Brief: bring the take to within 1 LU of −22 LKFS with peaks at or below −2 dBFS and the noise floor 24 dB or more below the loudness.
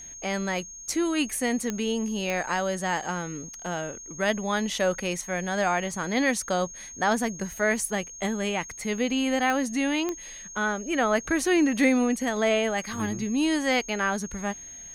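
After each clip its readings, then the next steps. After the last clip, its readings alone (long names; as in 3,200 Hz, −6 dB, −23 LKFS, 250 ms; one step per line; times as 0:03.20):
number of clicks 4; interfering tone 6,500 Hz; level of the tone −40 dBFS; integrated loudness −26.5 LKFS; sample peak −10.5 dBFS; target loudness −22.0 LKFS
→ click removal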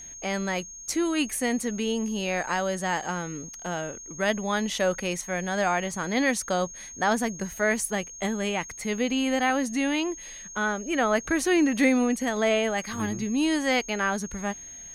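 number of clicks 0; interfering tone 6,500 Hz; level of the tone −40 dBFS
→ notch filter 6,500 Hz, Q 30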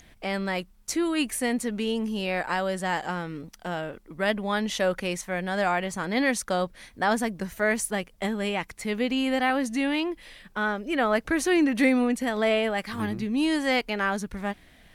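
interfering tone none found; integrated loudness −27.0 LKFS; sample peak −10.5 dBFS; target loudness −22.0 LKFS
→ level +5 dB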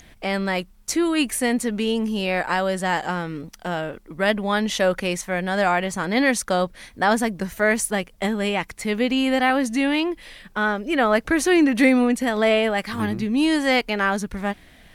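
integrated loudness −22.0 LKFS; sample peak −5.5 dBFS; background noise floor −51 dBFS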